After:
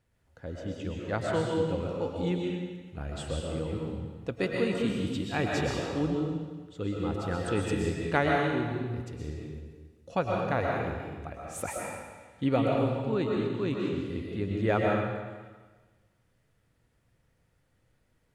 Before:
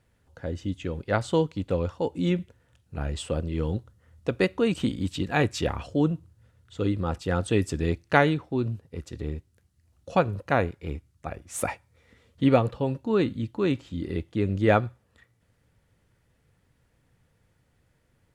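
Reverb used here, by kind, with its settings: algorithmic reverb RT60 1.4 s, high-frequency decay 0.95×, pre-delay 85 ms, DRR -2 dB; trim -7 dB

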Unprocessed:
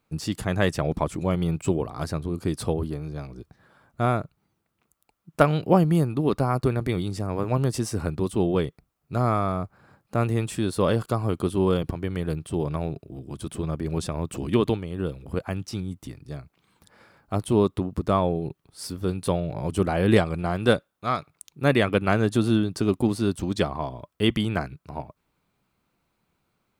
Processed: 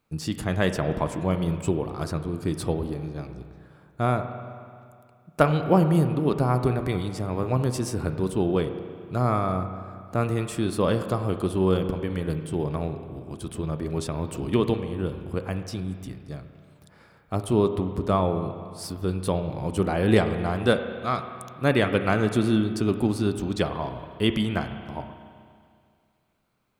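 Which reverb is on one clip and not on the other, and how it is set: spring tank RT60 2.2 s, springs 32/47 ms, chirp 80 ms, DRR 8 dB; trim -1 dB

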